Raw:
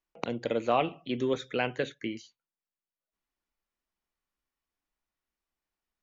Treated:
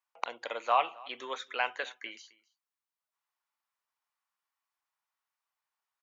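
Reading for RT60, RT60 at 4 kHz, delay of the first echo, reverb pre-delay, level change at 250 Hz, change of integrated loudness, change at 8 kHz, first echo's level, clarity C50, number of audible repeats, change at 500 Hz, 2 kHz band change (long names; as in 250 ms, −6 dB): no reverb audible, no reverb audible, 265 ms, no reverb audible, −21.0 dB, −2.0 dB, can't be measured, −23.5 dB, no reverb audible, 1, −8.0 dB, +1.0 dB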